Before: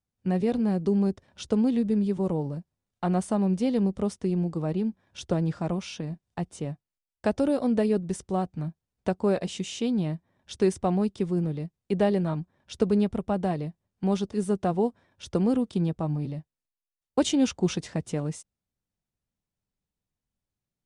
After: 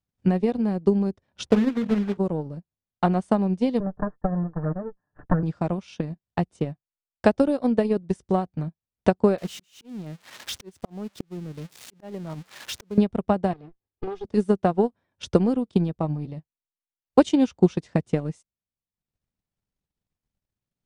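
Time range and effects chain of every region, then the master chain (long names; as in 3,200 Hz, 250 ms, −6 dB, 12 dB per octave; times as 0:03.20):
0:01.45–0:02.18: one scale factor per block 3 bits + low-pass filter 1,500 Hz 6 dB per octave + mains-hum notches 60/120/180/240/300/360/420/480 Hz
0:03.80–0:05.43: lower of the sound and its delayed copy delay 1.1 ms + Chebyshev low-pass with heavy ripple 1,800 Hz, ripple 3 dB + comb filter 6.7 ms, depth 60%
0:09.38–0:12.98: spike at every zero crossing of −20 dBFS + high-shelf EQ 5,300 Hz −12 dB + volume swells 689 ms
0:13.53–0:14.25: lower of the sound and its delayed copy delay 2.4 ms + low-pass filter 2,600 Hz 6 dB per octave + downward compressor 2.5 to 1, threshold −35 dBFS
whole clip: transient designer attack +9 dB, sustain −10 dB; high-shelf EQ 9,100 Hz −11 dB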